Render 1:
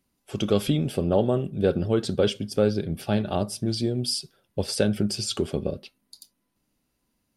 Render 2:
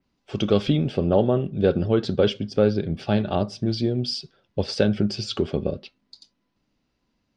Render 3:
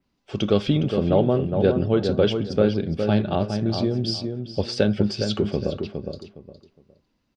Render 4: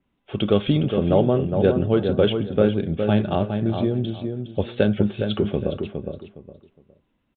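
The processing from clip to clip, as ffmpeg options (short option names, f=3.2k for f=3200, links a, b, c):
-af "lowpass=f=5.5k:w=0.5412,lowpass=f=5.5k:w=1.3066,adynamicequalizer=threshold=0.00631:dfrequency=3400:dqfactor=0.7:tfrequency=3400:tqfactor=0.7:attack=5:release=100:ratio=0.375:range=2:mode=cutabove:tftype=highshelf,volume=2.5dB"
-filter_complex "[0:a]asplit=2[a][b];[b]adelay=412,lowpass=f=2k:p=1,volume=-6dB,asplit=2[c][d];[d]adelay=412,lowpass=f=2k:p=1,volume=0.25,asplit=2[e][f];[f]adelay=412,lowpass=f=2k:p=1,volume=0.25[g];[a][c][e][g]amix=inputs=4:normalize=0"
-af "aresample=8000,aresample=44100,volume=1dB"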